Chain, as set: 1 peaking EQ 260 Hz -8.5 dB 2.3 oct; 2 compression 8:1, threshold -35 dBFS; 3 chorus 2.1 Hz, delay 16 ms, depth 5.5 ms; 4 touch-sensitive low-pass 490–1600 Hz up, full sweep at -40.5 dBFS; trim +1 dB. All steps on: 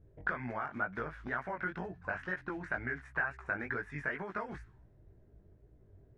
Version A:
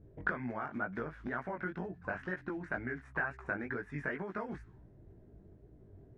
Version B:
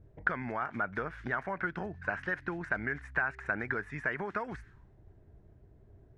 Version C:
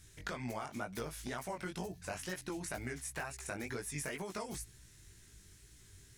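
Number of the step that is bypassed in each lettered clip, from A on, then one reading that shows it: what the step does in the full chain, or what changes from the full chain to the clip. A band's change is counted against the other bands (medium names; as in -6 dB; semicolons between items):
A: 1, 250 Hz band +3.5 dB; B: 3, crest factor change +3.5 dB; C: 4, 2 kHz band -9.0 dB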